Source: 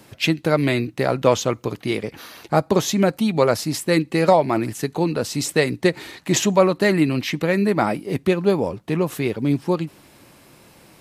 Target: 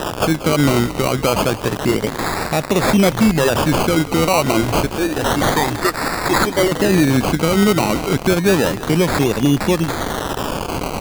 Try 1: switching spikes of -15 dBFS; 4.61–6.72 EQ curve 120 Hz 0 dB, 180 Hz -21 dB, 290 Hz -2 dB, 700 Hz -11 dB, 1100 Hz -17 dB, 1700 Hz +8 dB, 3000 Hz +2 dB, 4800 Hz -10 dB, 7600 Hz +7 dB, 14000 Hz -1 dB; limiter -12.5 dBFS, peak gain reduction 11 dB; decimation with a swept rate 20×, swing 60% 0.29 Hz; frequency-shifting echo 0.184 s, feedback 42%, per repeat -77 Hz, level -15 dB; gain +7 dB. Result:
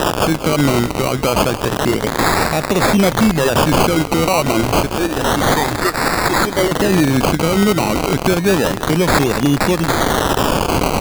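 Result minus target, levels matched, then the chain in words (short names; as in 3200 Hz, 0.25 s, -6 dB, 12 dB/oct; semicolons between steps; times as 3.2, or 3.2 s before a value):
switching spikes: distortion +7 dB
switching spikes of -22 dBFS; 4.61–6.72 EQ curve 120 Hz 0 dB, 180 Hz -21 dB, 290 Hz -2 dB, 700 Hz -11 dB, 1100 Hz -17 dB, 1700 Hz +8 dB, 3000 Hz +2 dB, 4800 Hz -10 dB, 7600 Hz +7 dB, 14000 Hz -1 dB; limiter -12.5 dBFS, peak gain reduction 11 dB; decimation with a swept rate 20×, swing 60% 0.29 Hz; frequency-shifting echo 0.184 s, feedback 42%, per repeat -77 Hz, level -15 dB; gain +7 dB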